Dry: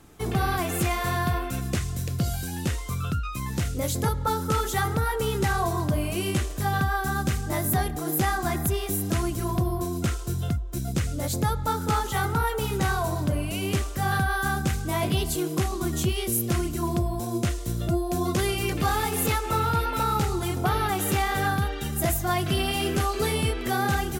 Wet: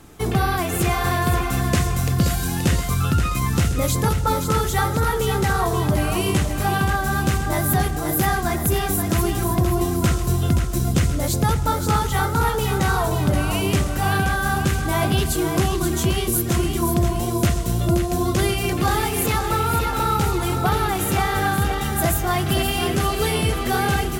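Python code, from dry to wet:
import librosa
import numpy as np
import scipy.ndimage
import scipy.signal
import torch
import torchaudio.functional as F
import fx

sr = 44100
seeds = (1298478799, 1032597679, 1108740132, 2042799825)

y = fx.rider(x, sr, range_db=10, speed_s=0.5)
y = fx.echo_feedback(y, sr, ms=527, feedback_pct=48, wet_db=-7)
y = y * 10.0 ** (4.5 / 20.0)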